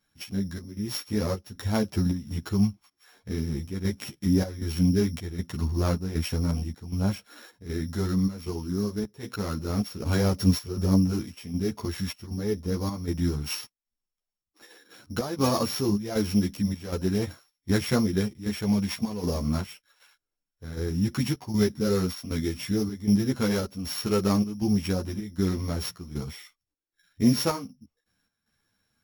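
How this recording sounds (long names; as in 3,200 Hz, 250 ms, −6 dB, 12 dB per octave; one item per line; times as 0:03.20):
a buzz of ramps at a fixed pitch in blocks of 8 samples
chopped level 1.3 Hz, depth 65%, duty 75%
a shimmering, thickened sound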